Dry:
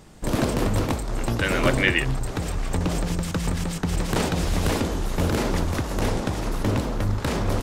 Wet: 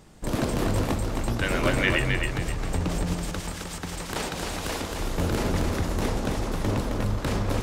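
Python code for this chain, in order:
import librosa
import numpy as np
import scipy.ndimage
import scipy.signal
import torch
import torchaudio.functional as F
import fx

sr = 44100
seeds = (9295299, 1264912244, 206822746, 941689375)

p1 = fx.low_shelf(x, sr, hz=380.0, db=-10.0, at=(3.16, 5.0))
p2 = p1 + fx.echo_feedback(p1, sr, ms=265, feedback_pct=32, wet_db=-4.5, dry=0)
y = p2 * librosa.db_to_amplitude(-3.5)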